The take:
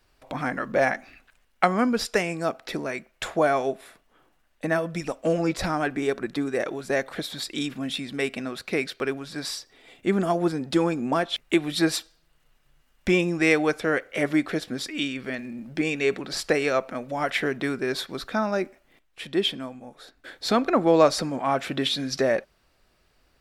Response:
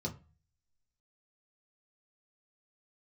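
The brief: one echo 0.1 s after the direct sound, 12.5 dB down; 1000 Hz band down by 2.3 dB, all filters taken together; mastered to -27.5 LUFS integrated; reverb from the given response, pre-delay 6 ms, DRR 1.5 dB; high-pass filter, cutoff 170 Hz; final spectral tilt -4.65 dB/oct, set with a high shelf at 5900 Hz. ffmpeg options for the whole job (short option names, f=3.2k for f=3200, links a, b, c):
-filter_complex "[0:a]highpass=170,equalizer=f=1k:t=o:g=-3.5,highshelf=f=5.9k:g=3,aecho=1:1:100:0.237,asplit=2[a][b];[1:a]atrim=start_sample=2205,adelay=6[c];[b][c]afir=irnorm=-1:irlink=0,volume=-2.5dB[d];[a][d]amix=inputs=2:normalize=0,volume=-6.5dB"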